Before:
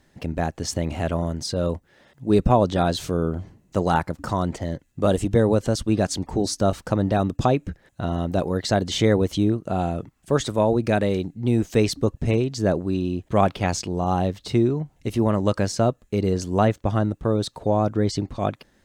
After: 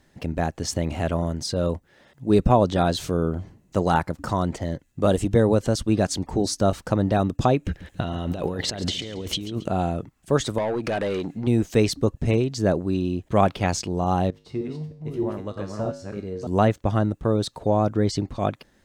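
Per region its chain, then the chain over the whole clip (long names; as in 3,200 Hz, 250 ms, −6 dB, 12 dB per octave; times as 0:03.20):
0:07.65–0:09.68: parametric band 2,900 Hz +7.5 dB 0.93 octaves + compressor whose output falls as the input rises −29 dBFS + repeating echo 138 ms, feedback 38%, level −14.5 dB
0:10.58–0:11.47: downward compressor 4 to 1, threshold −30 dBFS + mid-hump overdrive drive 23 dB, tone 2,700 Hz, clips at −15.5 dBFS
0:14.30–0:16.47: delay that plays each chunk backwards 311 ms, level −1.5 dB + high-shelf EQ 3,200 Hz −10 dB + tuned comb filter 51 Hz, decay 0.53 s, harmonics odd, mix 80%
whole clip: no processing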